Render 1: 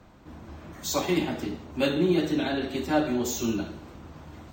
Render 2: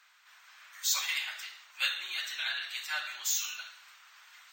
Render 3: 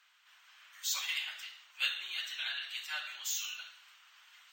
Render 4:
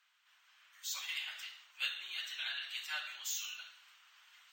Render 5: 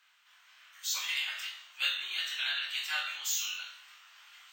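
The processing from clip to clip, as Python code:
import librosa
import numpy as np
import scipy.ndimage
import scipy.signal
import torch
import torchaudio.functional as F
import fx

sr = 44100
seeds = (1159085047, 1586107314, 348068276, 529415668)

y1 = scipy.signal.sosfilt(scipy.signal.butter(4, 1500.0, 'highpass', fs=sr, output='sos'), x)
y1 = y1 * librosa.db_to_amplitude(3.0)
y2 = fx.peak_eq(y1, sr, hz=3000.0, db=7.5, octaves=0.36)
y2 = y2 * librosa.db_to_amplitude(-6.0)
y3 = fx.rider(y2, sr, range_db=4, speed_s=0.5)
y3 = y3 * librosa.db_to_amplitude(-3.0)
y4 = fx.room_flutter(y3, sr, wall_m=3.8, rt60_s=0.27)
y4 = y4 * librosa.db_to_amplitude(5.5)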